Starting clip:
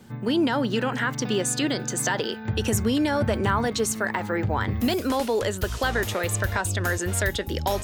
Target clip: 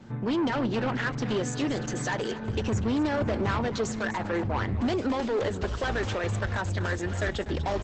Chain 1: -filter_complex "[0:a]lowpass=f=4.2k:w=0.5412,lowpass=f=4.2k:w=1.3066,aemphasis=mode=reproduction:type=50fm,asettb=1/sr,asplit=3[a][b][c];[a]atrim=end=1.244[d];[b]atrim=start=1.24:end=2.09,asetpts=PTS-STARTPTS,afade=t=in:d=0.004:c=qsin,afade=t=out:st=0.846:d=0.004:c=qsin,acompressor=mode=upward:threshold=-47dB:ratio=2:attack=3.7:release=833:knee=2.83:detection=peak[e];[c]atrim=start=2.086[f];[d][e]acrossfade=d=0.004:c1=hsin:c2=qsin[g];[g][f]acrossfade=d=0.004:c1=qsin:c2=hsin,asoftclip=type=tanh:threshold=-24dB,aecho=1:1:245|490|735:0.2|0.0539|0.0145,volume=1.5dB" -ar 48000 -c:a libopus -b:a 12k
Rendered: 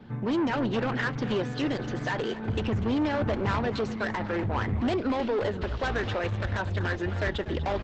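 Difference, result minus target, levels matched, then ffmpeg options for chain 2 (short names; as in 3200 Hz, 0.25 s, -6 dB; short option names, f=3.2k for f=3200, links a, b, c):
8000 Hz band -11.5 dB
-filter_complex "[0:a]lowpass=f=8.9k:w=0.5412,lowpass=f=8.9k:w=1.3066,aemphasis=mode=reproduction:type=50fm,asettb=1/sr,asplit=3[a][b][c];[a]atrim=end=1.244[d];[b]atrim=start=1.24:end=2.09,asetpts=PTS-STARTPTS,afade=t=in:d=0.004:c=qsin,afade=t=out:st=0.846:d=0.004:c=qsin,acompressor=mode=upward:threshold=-47dB:ratio=2:attack=3.7:release=833:knee=2.83:detection=peak[e];[c]atrim=start=2.086[f];[d][e]acrossfade=d=0.004:c1=hsin:c2=qsin[g];[g][f]acrossfade=d=0.004:c1=qsin:c2=hsin,asoftclip=type=tanh:threshold=-24dB,aecho=1:1:245|490|735:0.2|0.0539|0.0145,volume=1.5dB" -ar 48000 -c:a libopus -b:a 12k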